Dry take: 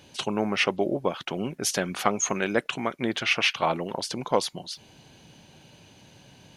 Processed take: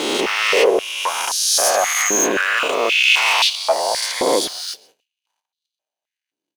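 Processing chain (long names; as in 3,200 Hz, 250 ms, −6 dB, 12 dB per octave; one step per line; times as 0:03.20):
peak hold with a rise ahead of every peak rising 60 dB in 2.13 s
in parallel at −10 dB: soft clipping −20.5 dBFS, distortion −9 dB
on the sum: leveller curve on the samples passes 2
high-shelf EQ 7,000 Hz +8.5 dB
noise gate −41 dBFS, range −34 dB
on a send: single-tap delay 133 ms −24 dB
on the sum: high-pass on a step sequencer 3.8 Hz 320–3,900 Hz
level −8 dB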